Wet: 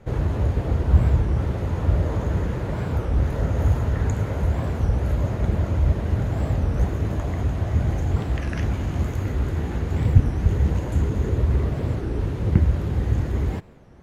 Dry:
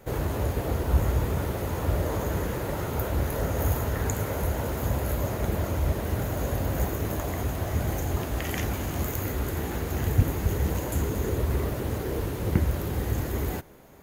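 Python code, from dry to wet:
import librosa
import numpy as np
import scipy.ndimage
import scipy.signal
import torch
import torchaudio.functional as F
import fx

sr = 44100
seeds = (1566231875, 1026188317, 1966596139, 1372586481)

y = scipy.signal.sosfilt(scipy.signal.butter(2, 7100.0, 'lowpass', fs=sr, output='sos'), x)
y = fx.bass_treble(y, sr, bass_db=8, treble_db=-5)
y = fx.record_warp(y, sr, rpm=33.33, depth_cents=250.0)
y = y * 10.0 ** (-1.0 / 20.0)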